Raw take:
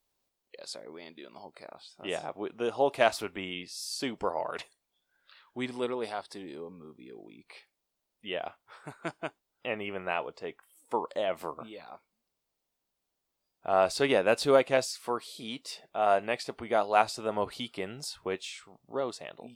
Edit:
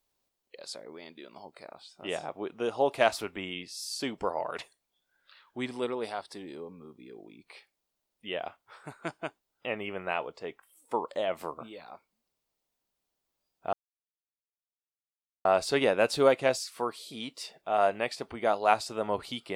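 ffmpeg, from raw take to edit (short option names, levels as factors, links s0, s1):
-filter_complex "[0:a]asplit=2[s0][s1];[s0]atrim=end=13.73,asetpts=PTS-STARTPTS,afade=t=out:st=13.726:d=0.004:c=hsin,apad=pad_dur=1.72[s2];[s1]atrim=start=13.73,asetpts=PTS-STARTPTS,afade=t=in:d=0.004:c=hsin[s3];[s2][s3]concat=n=2:v=0:a=1"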